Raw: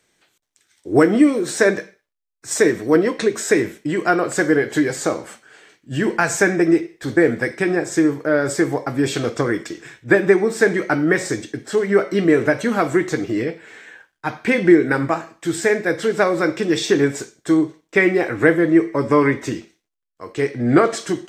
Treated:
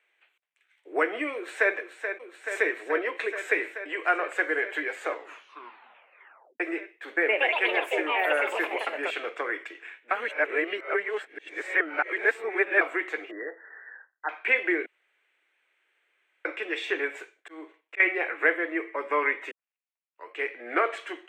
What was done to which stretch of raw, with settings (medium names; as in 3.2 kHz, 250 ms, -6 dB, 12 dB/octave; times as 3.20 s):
1.33–1.75 s: echo throw 430 ms, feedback 85%, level -8.5 dB
5.06 s: tape stop 1.54 s
7.13–9.46 s: ever faster or slower copies 125 ms, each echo +4 st, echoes 3
10.11–12.81 s: reverse
13.31–14.29 s: brick-wall FIR low-pass 2 kHz
14.86–16.45 s: room tone
17.11–18.00 s: slow attack 232 ms
19.51 s: tape start 0.78 s
whole clip: Bessel high-pass 640 Hz, order 8; resonant high shelf 3.7 kHz -13 dB, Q 3; trim -6.5 dB